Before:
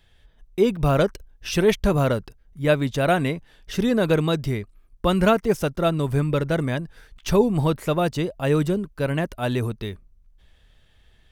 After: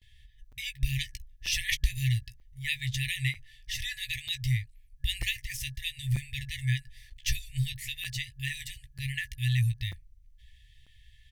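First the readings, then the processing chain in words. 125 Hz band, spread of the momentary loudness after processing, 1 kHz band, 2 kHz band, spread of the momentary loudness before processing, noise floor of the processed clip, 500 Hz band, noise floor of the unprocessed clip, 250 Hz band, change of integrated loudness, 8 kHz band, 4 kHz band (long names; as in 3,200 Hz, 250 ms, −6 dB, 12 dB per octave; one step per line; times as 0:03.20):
−6.0 dB, 10 LU, below −40 dB, −3.5 dB, 10 LU, −58 dBFS, below −40 dB, −58 dBFS, −21.5 dB, −10.0 dB, +0.5 dB, +0.5 dB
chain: brick-wall band-stop 130–1,700 Hz
double-tracking delay 16 ms −10 dB
noise gate with hold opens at −54 dBFS
regular buffer underruns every 0.94 s, samples 256, zero, from 0:00.52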